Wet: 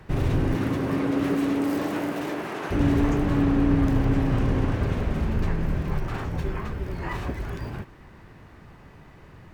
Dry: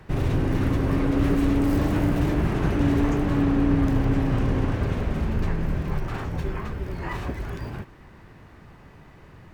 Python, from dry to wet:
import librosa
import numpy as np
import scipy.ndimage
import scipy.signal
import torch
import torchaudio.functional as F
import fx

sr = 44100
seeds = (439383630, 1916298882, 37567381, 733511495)

y = fx.highpass(x, sr, hz=fx.line((0.54, 120.0), (2.7, 490.0)), slope=12, at=(0.54, 2.7), fade=0.02)